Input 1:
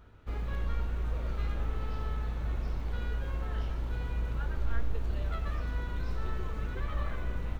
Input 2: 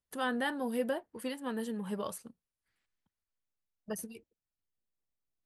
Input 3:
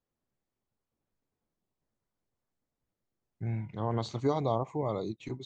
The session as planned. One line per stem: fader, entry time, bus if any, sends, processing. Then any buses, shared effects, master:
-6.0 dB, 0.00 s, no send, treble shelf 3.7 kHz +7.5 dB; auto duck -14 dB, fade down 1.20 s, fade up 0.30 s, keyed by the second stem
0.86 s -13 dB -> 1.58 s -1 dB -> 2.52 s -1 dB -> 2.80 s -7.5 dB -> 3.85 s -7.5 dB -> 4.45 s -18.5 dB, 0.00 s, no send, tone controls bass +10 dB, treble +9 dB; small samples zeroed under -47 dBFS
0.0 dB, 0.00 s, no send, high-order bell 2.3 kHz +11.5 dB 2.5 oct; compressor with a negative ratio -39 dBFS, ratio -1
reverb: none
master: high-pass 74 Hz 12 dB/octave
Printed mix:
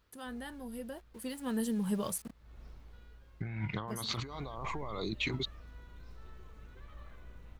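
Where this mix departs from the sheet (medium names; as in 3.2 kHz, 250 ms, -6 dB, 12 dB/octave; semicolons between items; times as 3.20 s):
stem 1 -6.0 dB -> -17.5 dB; master: missing high-pass 74 Hz 12 dB/octave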